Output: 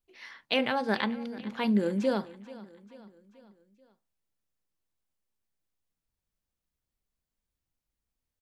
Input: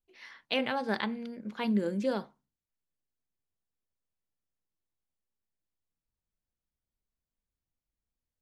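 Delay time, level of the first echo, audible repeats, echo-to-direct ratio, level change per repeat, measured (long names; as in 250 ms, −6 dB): 436 ms, −19.0 dB, 3, −17.5 dB, −5.5 dB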